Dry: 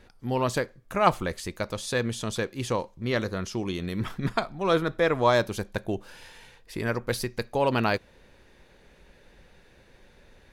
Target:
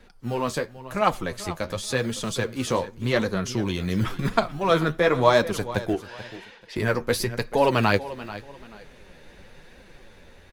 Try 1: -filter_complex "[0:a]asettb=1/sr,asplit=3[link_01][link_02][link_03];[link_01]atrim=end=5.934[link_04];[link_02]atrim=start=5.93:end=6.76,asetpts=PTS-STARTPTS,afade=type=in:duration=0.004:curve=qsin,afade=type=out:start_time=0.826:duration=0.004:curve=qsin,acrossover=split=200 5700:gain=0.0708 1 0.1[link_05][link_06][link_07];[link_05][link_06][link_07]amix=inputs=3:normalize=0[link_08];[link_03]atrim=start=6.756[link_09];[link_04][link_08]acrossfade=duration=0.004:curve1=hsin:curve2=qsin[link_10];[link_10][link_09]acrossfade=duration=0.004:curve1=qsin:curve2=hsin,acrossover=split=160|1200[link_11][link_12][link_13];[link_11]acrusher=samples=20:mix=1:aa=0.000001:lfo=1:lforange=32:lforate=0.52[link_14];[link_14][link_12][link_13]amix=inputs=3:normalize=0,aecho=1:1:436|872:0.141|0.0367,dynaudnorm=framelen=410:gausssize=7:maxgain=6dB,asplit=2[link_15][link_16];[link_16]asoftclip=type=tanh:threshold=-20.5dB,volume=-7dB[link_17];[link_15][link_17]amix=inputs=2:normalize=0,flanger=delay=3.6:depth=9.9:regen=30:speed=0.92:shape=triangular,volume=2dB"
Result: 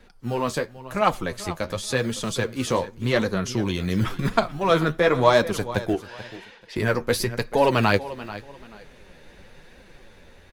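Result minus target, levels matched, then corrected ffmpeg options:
soft clipping: distortion −5 dB
-filter_complex "[0:a]asettb=1/sr,asplit=3[link_01][link_02][link_03];[link_01]atrim=end=5.934[link_04];[link_02]atrim=start=5.93:end=6.76,asetpts=PTS-STARTPTS,afade=type=in:duration=0.004:curve=qsin,afade=type=out:start_time=0.826:duration=0.004:curve=qsin,acrossover=split=200 5700:gain=0.0708 1 0.1[link_05][link_06][link_07];[link_05][link_06][link_07]amix=inputs=3:normalize=0[link_08];[link_03]atrim=start=6.756[link_09];[link_04][link_08]acrossfade=duration=0.004:curve1=hsin:curve2=qsin[link_10];[link_10][link_09]acrossfade=duration=0.004:curve1=qsin:curve2=hsin,acrossover=split=160|1200[link_11][link_12][link_13];[link_11]acrusher=samples=20:mix=1:aa=0.000001:lfo=1:lforange=32:lforate=0.52[link_14];[link_14][link_12][link_13]amix=inputs=3:normalize=0,aecho=1:1:436|872:0.141|0.0367,dynaudnorm=framelen=410:gausssize=7:maxgain=6dB,asplit=2[link_15][link_16];[link_16]asoftclip=type=tanh:threshold=-31.5dB,volume=-7dB[link_17];[link_15][link_17]amix=inputs=2:normalize=0,flanger=delay=3.6:depth=9.9:regen=30:speed=0.92:shape=triangular,volume=2dB"

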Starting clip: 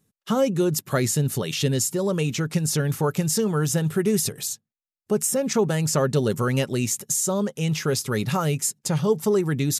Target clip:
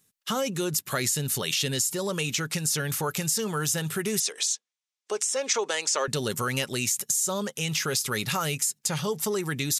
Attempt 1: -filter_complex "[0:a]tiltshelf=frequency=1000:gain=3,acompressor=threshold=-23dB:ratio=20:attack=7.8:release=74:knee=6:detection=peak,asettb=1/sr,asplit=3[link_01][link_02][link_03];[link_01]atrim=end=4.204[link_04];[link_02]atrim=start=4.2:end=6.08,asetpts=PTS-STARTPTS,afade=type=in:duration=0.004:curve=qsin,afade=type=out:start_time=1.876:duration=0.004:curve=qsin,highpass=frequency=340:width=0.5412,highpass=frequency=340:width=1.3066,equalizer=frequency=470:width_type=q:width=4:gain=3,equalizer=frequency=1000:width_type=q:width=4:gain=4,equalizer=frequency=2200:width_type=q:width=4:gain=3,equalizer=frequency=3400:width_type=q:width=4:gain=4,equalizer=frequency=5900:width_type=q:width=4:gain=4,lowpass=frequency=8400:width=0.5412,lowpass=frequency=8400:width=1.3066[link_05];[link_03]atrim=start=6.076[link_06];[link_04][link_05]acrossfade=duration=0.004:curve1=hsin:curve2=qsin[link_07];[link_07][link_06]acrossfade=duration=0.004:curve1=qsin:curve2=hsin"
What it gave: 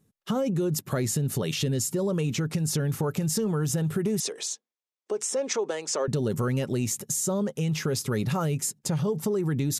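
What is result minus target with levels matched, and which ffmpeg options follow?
1,000 Hz band −3.5 dB
-filter_complex "[0:a]tiltshelf=frequency=1000:gain=-7.5,acompressor=threshold=-23dB:ratio=20:attack=7.8:release=74:knee=6:detection=peak,asettb=1/sr,asplit=3[link_01][link_02][link_03];[link_01]atrim=end=4.204[link_04];[link_02]atrim=start=4.2:end=6.08,asetpts=PTS-STARTPTS,afade=type=in:duration=0.004:curve=qsin,afade=type=out:start_time=1.876:duration=0.004:curve=qsin,highpass=frequency=340:width=0.5412,highpass=frequency=340:width=1.3066,equalizer=frequency=470:width_type=q:width=4:gain=3,equalizer=frequency=1000:width_type=q:width=4:gain=4,equalizer=frequency=2200:width_type=q:width=4:gain=3,equalizer=frequency=3400:width_type=q:width=4:gain=4,equalizer=frequency=5900:width_type=q:width=4:gain=4,lowpass=frequency=8400:width=0.5412,lowpass=frequency=8400:width=1.3066[link_05];[link_03]atrim=start=6.076[link_06];[link_04][link_05]acrossfade=duration=0.004:curve1=hsin:curve2=qsin[link_07];[link_07][link_06]acrossfade=duration=0.004:curve1=qsin:curve2=hsin"

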